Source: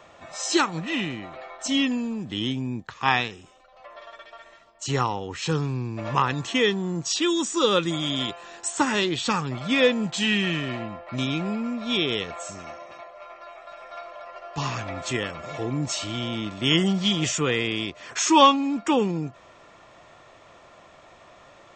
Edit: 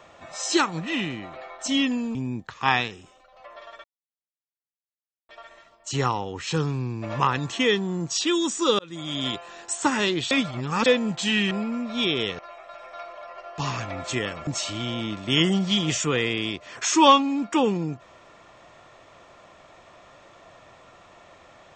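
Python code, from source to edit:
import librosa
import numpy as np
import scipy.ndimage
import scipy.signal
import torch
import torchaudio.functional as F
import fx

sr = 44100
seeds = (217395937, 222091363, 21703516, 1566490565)

y = fx.edit(x, sr, fx.cut(start_s=2.15, length_s=0.4),
    fx.insert_silence(at_s=4.24, length_s=1.45),
    fx.fade_in_span(start_s=7.74, length_s=0.49),
    fx.reverse_span(start_s=9.26, length_s=0.55),
    fx.cut(start_s=10.46, length_s=0.97),
    fx.cut(start_s=12.31, length_s=1.06),
    fx.cut(start_s=15.45, length_s=0.36), tone=tone)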